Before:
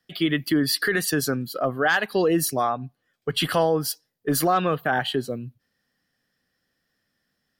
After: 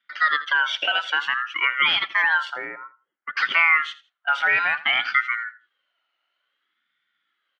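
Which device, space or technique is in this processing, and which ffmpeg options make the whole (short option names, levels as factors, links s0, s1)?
voice changer toy: -filter_complex "[0:a]aeval=exprs='val(0)*sin(2*PI*1400*n/s+1400*0.2/0.57*sin(2*PI*0.57*n/s))':c=same,highpass=410,equalizer=f=440:t=q:w=4:g=-10,equalizer=f=650:t=q:w=4:g=-3,equalizer=f=940:t=q:w=4:g=-6,equalizer=f=1400:t=q:w=4:g=8,equalizer=f=2100:t=q:w=4:g=9,equalizer=f=3100:t=q:w=4:g=6,lowpass=f=3900:w=0.5412,lowpass=f=3900:w=1.3066,asettb=1/sr,asplit=3[s0][s1][s2];[s0]atrim=end=2.544[s3];[s1]atrim=start=2.54:end=3.37,asetpts=PTS-STARTPTS,afade=t=in:d=0.004:c=qsin,afade=t=out:st=0.826:d=0.004:c=qsin,lowpass=1000[s4];[s2]atrim=start=3.366[s5];[s3][s4]acrossfade=d=0.004:c1=hsin:c2=qsin[s6];[s6][s5]acrossfade=d=0.004:c1=qsin:c2=hsin,aecho=1:1:82|164:0.141|0.0311"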